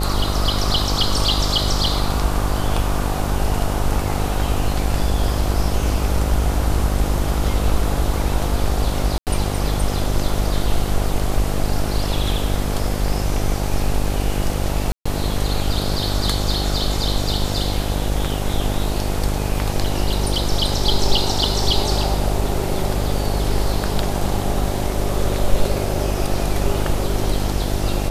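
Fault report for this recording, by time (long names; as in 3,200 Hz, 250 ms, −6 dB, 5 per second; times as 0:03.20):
mains buzz 50 Hz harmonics 17 −23 dBFS
0:09.18–0:09.27: drop-out 88 ms
0:14.92–0:15.05: drop-out 135 ms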